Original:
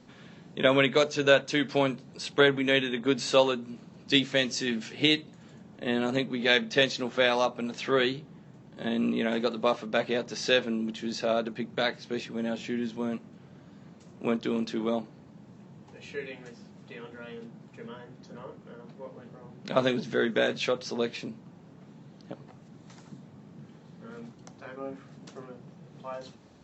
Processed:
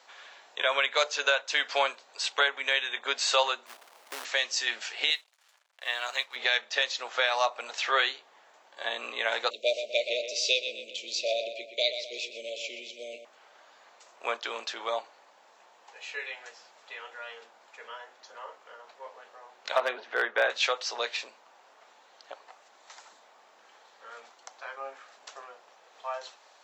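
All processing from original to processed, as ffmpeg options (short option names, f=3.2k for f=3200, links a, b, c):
-filter_complex "[0:a]asettb=1/sr,asplit=3[a][b][c];[a]atrim=end=3.664[d];[b]atrim=start=3.66:end=4.25,asetpts=PTS-STARTPTS,afade=t=in:d=0.004:c=qsin,afade=t=out:st=0.586:d=0.004:c=qsin,lowpass=f=1.1k:w=0.5412,lowpass=f=1.1k:w=1.3066,acompressor=threshold=-28dB:ratio=6:attack=3.2:release=140:knee=1:detection=peak,acrusher=bits=2:mode=log:mix=0:aa=0.000001[e];[c]atrim=start=4.246[f];[d][e]acrossfade=d=0.004:c1=hsin:c2=qsin[g];[g][f]acrossfade=d=0.004:c1=qsin:c2=hsin,asettb=1/sr,asplit=3[h][i][j];[h]atrim=end=5.104[k];[i]atrim=start=5.1:end=6.36,asetpts=PTS-STARTPTS,afade=t=in:d=0.004:c=qsin,afade=t=out:st=1.256:d=0.004:c=qsin,highpass=110,equalizer=f=270:t=o:w=2.6:g=-14.5,aeval=exprs='sgn(val(0))*max(abs(val(0))-0.00126,0)':c=same[l];[j]atrim=start=6.356[m];[k][l]acrossfade=d=0.004:c1=hsin:c2=qsin[n];[n][m]acrossfade=d=0.004:c1=qsin:c2=hsin,asettb=1/sr,asplit=3[o][p][q];[o]atrim=end=9.504[r];[p]atrim=start=9.5:end=13.25,asetpts=PTS-STARTPTS,afade=t=in:d=0.004:c=qsin,afade=t=out:st=3.746:d=0.004:c=qsin,asuperstop=centerf=1200:order=20:qfactor=0.78,asplit=2[s][t];[t]adelay=124,lowpass=f=3.8k:p=1,volume=-8dB,asplit=2[u][v];[v]adelay=124,lowpass=f=3.8k:p=1,volume=0.46,asplit=2[w][x];[x]adelay=124,lowpass=f=3.8k:p=1,volume=0.46,asplit=2[y][z];[z]adelay=124,lowpass=f=3.8k:p=1,volume=0.46,asplit=2[aa][ab];[ab]adelay=124,lowpass=f=3.8k:p=1,volume=0.46[ac];[s][u][w][y][aa][ac]amix=inputs=6:normalize=0,atrim=end_sample=165375[ad];[q]atrim=start=13.246[ae];[r][ad]acrossfade=d=0.004:c1=hsin:c2=qsin[af];[af][ae]acrossfade=d=0.004:c1=qsin:c2=hsin,asettb=1/sr,asplit=3[ag][ah][ai];[ag]atrim=end=19.774[aj];[ah]atrim=start=19.77:end=20.5,asetpts=PTS-STARTPTS,afade=t=in:d=0.004:c=qsin,afade=t=out:st=0.726:d=0.004:c=qsin,highpass=230,lowpass=2.1k,volume=17.5dB,asoftclip=hard,volume=-17.5dB,lowshelf=f=340:g=6.5[ak];[ai]atrim=start=20.496[al];[aj][ak]acrossfade=d=0.004:c1=hsin:c2=qsin[am];[am][al]acrossfade=d=0.004:c1=qsin:c2=hsin,highpass=f=680:w=0.5412,highpass=f=680:w=1.3066,alimiter=limit=-18dB:level=0:latency=1:release=374,volume=6dB"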